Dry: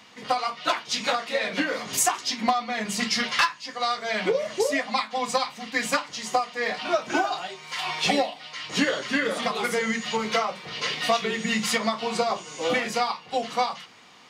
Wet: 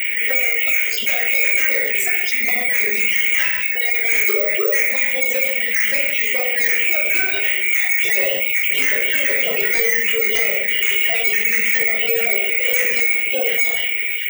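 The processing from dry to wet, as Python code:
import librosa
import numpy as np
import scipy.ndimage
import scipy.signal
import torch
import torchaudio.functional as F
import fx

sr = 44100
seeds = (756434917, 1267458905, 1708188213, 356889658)

p1 = fx.spec_dropout(x, sr, seeds[0], share_pct=34)
p2 = fx.notch(p1, sr, hz=760.0, q=12.0)
p3 = fx.spec_gate(p2, sr, threshold_db=-25, keep='strong')
p4 = fx.tilt_eq(p3, sr, slope=2.5)
p5 = fx.rider(p4, sr, range_db=10, speed_s=0.5)
p6 = p4 + F.gain(torch.from_numpy(p5), 3.0).numpy()
p7 = fx.double_bandpass(p6, sr, hz=930.0, octaves=2.5)
p8 = fx.fixed_phaser(p7, sr, hz=1200.0, stages=6)
p9 = 10.0 ** (-30.5 / 20.0) * np.tanh(p8 / 10.0 ** (-30.5 / 20.0))
p10 = p9 + fx.echo_single(p9, sr, ms=130, db=-16.5, dry=0)
p11 = fx.room_shoebox(p10, sr, seeds[1], volume_m3=740.0, walls='furnished', distance_m=2.8)
p12 = (np.kron(p11[::2], np.eye(2)[0]) * 2)[:len(p11)]
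p13 = fx.env_flatten(p12, sr, amount_pct=70)
y = F.gain(torch.from_numpy(p13), 8.0).numpy()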